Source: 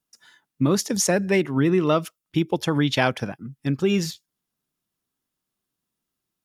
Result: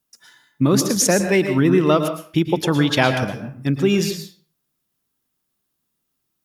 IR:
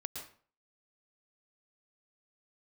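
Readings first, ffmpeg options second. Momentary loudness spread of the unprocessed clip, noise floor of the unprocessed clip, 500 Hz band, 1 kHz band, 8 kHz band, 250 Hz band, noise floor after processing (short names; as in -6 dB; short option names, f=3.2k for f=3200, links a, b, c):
9 LU, -83 dBFS, +4.5 dB, +4.0 dB, +5.0 dB, +4.0 dB, -75 dBFS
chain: -filter_complex "[0:a]asplit=2[a][b];[1:a]atrim=start_sample=2205,highshelf=f=12k:g=11.5[c];[b][c]afir=irnorm=-1:irlink=0,volume=4dB[d];[a][d]amix=inputs=2:normalize=0,volume=-3dB"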